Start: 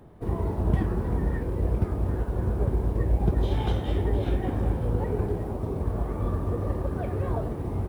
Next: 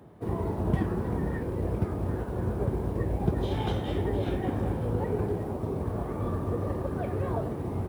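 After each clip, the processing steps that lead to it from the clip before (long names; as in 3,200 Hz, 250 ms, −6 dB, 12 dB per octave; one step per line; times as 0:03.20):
high-pass filter 93 Hz 12 dB per octave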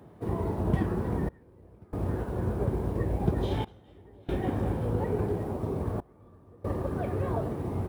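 gate pattern "xxxxxx...xx" 70 BPM −24 dB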